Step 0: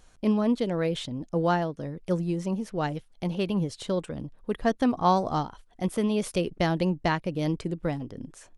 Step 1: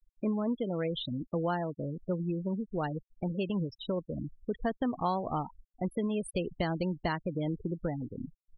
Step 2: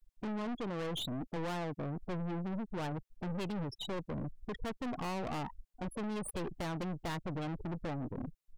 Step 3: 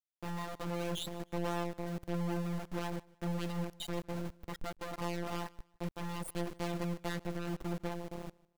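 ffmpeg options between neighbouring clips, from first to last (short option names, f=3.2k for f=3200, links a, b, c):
-af "afftfilt=real='re*gte(hypot(re,im),0.0355)':imag='im*gte(hypot(re,im),0.0355)':win_size=1024:overlap=0.75,highshelf=f=4.8k:g=9,acompressor=threshold=-31dB:ratio=2.5"
-af "aeval=exprs='(tanh(126*val(0)+0.45)-tanh(0.45))/126':c=same,volume=6dB"
-af "afftfilt=real='hypot(re,im)*cos(PI*b)':imag='0':win_size=1024:overlap=0.75,aeval=exprs='val(0)*gte(abs(val(0)),0.00668)':c=same,aecho=1:1:153|306:0.0668|0.0201,volume=3dB"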